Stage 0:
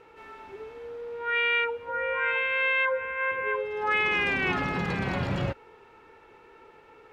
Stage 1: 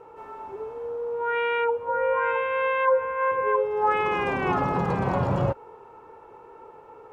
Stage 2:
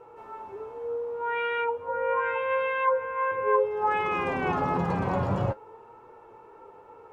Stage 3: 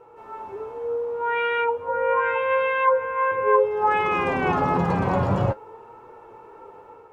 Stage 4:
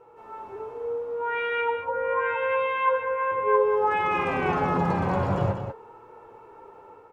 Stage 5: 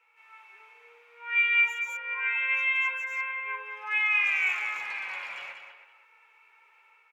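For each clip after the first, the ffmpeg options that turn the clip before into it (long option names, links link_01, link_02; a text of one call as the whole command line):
ffmpeg -i in.wav -af "equalizer=frequency=125:width_type=o:width=1:gain=5,equalizer=frequency=500:width_type=o:width=1:gain=6,equalizer=frequency=1000:width_type=o:width=1:gain=10,equalizer=frequency=2000:width_type=o:width=1:gain=-8,equalizer=frequency=4000:width_type=o:width=1:gain=-8" out.wav
ffmpeg -i in.wav -af "flanger=delay=8.1:depth=4.1:regen=50:speed=0.33:shape=triangular,volume=1.5dB" out.wav
ffmpeg -i in.wav -af "dynaudnorm=framelen=110:gausssize=5:maxgain=5dB" out.wav
ffmpeg -i in.wav -af "aecho=1:1:64.14|192.4:0.282|0.398,volume=-3.5dB" out.wav
ffmpeg -i in.wav -filter_complex "[0:a]highpass=frequency=2300:width_type=q:width=6.2,asplit=2[link_01][link_02];[link_02]adelay=320,highpass=300,lowpass=3400,asoftclip=type=hard:threshold=-20.5dB,volume=-12dB[link_03];[link_01][link_03]amix=inputs=2:normalize=0,volume=-3dB" out.wav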